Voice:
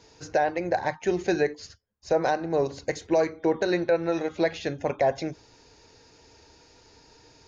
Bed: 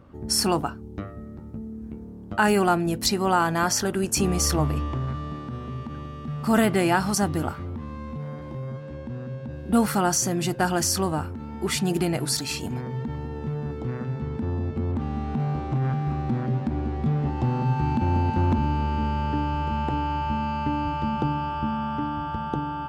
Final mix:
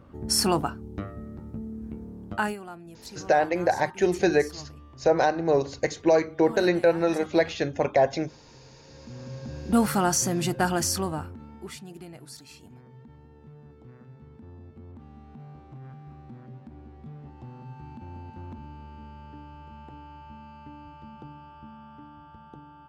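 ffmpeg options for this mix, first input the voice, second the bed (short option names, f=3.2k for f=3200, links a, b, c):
-filter_complex "[0:a]adelay=2950,volume=2.5dB[a];[1:a]volume=19dB,afade=t=out:st=2.26:d=0.31:silence=0.1,afade=t=in:st=8.83:d=0.8:silence=0.105925,afade=t=out:st=10.64:d=1.19:silence=0.125893[b];[a][b]amix=inputs=2:normalize=0"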